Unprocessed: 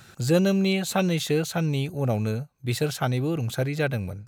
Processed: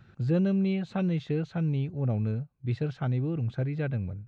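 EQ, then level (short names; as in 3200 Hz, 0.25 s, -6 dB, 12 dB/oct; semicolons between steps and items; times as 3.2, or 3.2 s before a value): tape spacing loss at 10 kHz 44 dB; bell 700 Hz -7.5 dB 2.4 oct; 0.0 dB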